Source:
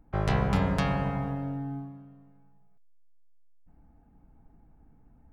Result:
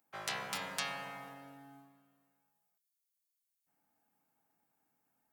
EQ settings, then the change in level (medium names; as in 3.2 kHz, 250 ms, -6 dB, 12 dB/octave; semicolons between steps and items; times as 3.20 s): high-pass 110 Hz 12 dB/octave; differentiator; hum notches 60/120/180/240/300/360/420 Hz; +7.0 dB